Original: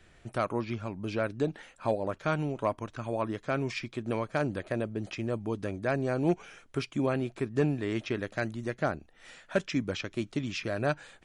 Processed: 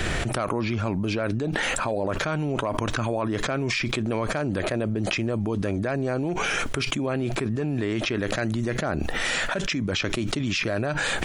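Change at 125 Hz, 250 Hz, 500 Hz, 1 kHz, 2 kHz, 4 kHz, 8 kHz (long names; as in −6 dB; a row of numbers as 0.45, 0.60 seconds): +6.5, +5.5, +3.5, +5.5, +10.0, +13.5, +16.0 decibels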